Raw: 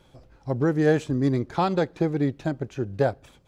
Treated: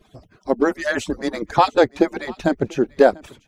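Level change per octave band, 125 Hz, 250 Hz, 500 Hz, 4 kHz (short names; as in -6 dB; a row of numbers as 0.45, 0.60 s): -7.5, +2.5, +7.0, +9.5 dB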